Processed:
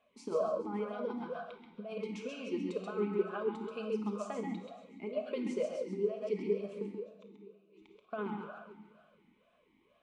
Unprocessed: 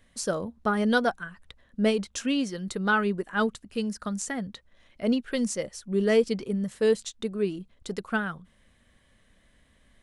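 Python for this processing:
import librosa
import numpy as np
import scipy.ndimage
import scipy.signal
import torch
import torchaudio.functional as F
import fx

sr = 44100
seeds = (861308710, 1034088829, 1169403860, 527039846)

p1 = x + fx.echo_thinned(x, sr, ms=142, feedback_pct=67, hz=750.0, wet_db=-15.0, dry=0)
p2 = fx.gate_flip(p1, sr, shuts_db=-31.0, range_db=-29, at=(6.86, 8.13))
p3 = fx.over_compress(p2, sr, threshold_db=-27.0, ratio=-0.5)
p4 = p3 + 10.0 ** (-5.0 / 20.0) * np.pad(p3, (int(132 * sr / 1000.0), 0))[:len(p3)]
p5 = fx.room_shoebox(p4, sr, seeds[0], volume_m3=1400.0, walls='mixed', distance_m=1.4)
p6 = fx.vowel_sweep(p5, sr, vowels='a-u', hz=2.1)
y = p6 * 10.0 ** (2.5 / 20.0)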